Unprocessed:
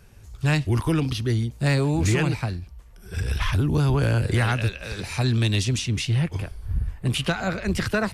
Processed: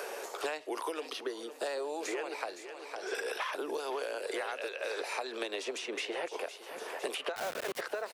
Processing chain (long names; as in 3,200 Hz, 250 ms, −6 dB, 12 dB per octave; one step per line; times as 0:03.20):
Butterworth high-pass 450 Hz 36 dB per octave
0:01.28–0:02.04: parametric band 2,200 Hz −14.5 dB → −7 dB 0.21 octaves
0:02.59–0:03.15: low-pass filter 6,200 Hz 24 dB per octave
tilt shelving filter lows +8 dB
downward compressor 4 to 1, threshold −33 dBFS, peak gain reduction 11.5 dB
0:07.36–0:07.81: bit-depth reduction 6 bits, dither none
repeating echo 508 ms, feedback 26%, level −18 dB
multiband upward and downward compressor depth 100%
level −1 dB